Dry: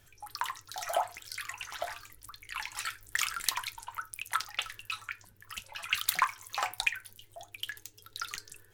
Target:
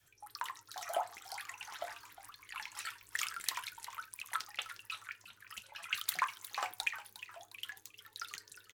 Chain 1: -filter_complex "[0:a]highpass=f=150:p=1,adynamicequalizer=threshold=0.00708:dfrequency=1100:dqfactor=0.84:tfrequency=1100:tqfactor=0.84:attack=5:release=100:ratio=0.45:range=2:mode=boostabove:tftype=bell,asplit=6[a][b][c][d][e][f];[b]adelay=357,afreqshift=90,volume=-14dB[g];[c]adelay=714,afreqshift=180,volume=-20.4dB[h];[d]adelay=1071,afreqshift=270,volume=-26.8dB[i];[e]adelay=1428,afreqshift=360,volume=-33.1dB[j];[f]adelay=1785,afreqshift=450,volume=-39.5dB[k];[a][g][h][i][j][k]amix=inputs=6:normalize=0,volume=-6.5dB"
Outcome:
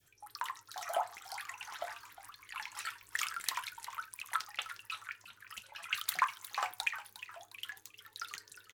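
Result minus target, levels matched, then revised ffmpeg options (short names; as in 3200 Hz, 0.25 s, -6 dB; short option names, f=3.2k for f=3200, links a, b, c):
250 Hz band -3.0 dB
-filter_complex "[0:a]highpass=f=150:p=1,adynamicequalizer=threshold=0.00708:dfrequency=320:dqfactor=0.84:tfrequency=320:tqfactor=0.84:attack=5:release=100:ratio=0.45:range=2:mode=boostabove:tftype=bell,asplit=6[a][b][c][d][e][f];[b]adelay=357,afreqshift=90,volume=-14dB[g];[c]adelay=714,afreqshift=180,volume=-20.4dB[h];[d]adelay=1071,afreqshift=270,volume=-26.8dB[i];[e]adelay=1428,afreqshift=360,volume=-33.1dB[j];[f]adelay=1785,afreqshift=450,volume=-39.5dB[k];[a][g][h][i][j][k]amix=inputs=6:normalize=0,volume=-6.5dB"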